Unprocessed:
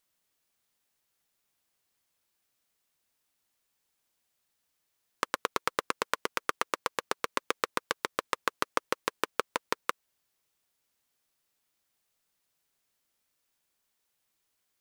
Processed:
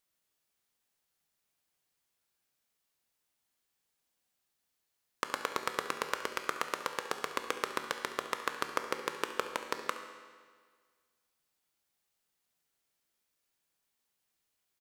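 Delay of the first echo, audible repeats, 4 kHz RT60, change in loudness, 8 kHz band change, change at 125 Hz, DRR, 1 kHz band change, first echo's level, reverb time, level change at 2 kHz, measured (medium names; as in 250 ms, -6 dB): 69 ms, 1, 1.5 s, -3.0 dB, -3.0 dB, -3.0 dB, 5.5 dB, -3.0 dB, -15.5 dB, 1.7 s, -3.0 dB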